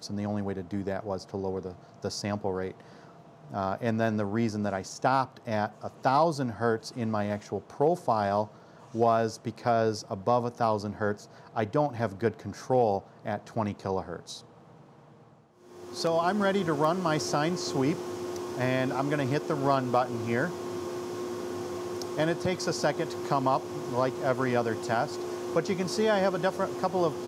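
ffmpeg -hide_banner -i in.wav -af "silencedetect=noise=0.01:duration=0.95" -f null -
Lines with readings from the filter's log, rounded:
silence_start: 14.40
silence_end: 15.76 | silence_duration: 1.36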